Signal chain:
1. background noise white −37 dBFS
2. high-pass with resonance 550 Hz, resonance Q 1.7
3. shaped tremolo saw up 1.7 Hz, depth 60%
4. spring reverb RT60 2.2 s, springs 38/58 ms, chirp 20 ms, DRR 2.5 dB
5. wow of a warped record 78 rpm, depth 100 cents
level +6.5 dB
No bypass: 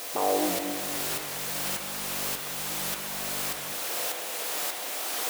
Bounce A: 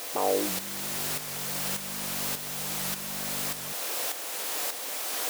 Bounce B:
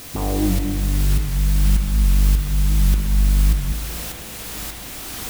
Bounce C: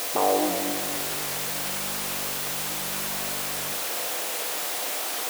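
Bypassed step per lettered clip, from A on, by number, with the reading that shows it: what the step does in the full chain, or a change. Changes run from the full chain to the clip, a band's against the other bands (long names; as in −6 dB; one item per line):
4, 125 Hz band +4.0 dB
2, 125 Hz band +27.5 dB
3, change in integrated loudness +3.0 LU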